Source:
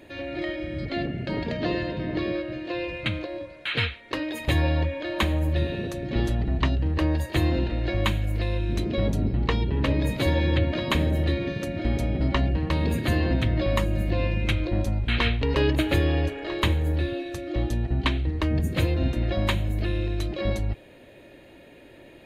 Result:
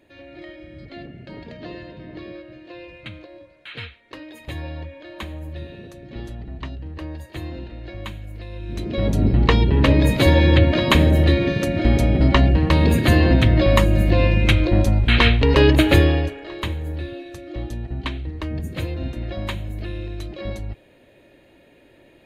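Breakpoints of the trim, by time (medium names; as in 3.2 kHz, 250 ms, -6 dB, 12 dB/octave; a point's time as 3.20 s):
8.49 s -9 dB
8.83 s -1 dB
9.30 s +8.5 dB
16.00 s +8.5 dB
16.45 s -3.5 dB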